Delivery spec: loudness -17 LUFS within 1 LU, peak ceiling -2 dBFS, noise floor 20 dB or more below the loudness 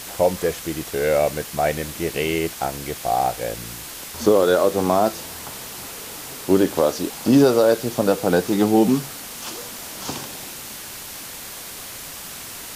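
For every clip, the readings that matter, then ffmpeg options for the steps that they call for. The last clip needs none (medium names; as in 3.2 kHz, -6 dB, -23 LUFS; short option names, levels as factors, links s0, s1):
noise floor -36 dBFS; noise floor target -41 dBFS; loudness -21.0 LUFS; peak level -4.0 dBFS; loudness target -17.0 LUFS
-> -af "afftdn=nr=6:nf=-36"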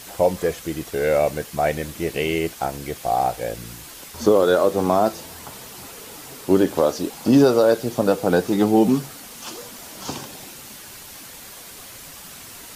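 noise floor -40 dBFS; noise floor target -41 dBFS
-> -af "afftdn=nr=6:nf=-40"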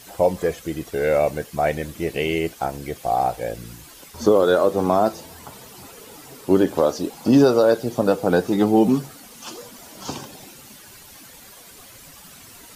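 noise floor -45 dBFS; loudness -20.5 LUFS; peak level -4.0 dBFS; loudness target -17.0 LUFS
-> -af "volume=1.5,alimiter=limit=0.794:level=0:latency=1"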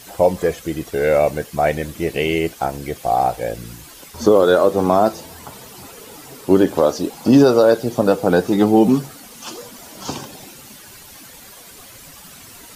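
loudness -17.0 LUFS; peak level -2.0 dBFS; noise floor -41 dBFS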